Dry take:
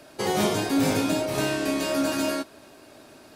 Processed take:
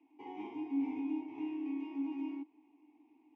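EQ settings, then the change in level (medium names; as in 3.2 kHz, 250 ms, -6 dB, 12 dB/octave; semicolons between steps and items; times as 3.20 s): vowel filter u; cabinet simulation 140–4400 Hz, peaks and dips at 190 Hz -5 dB, 380 Hz -10 dB, 900 Hz -6 dB, 1.6 kHz -9 dB, 2.3 kHz -8 dB, 3.6 kHz -4 dB; static phaser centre 870 Hz, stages 8; -1.5 dB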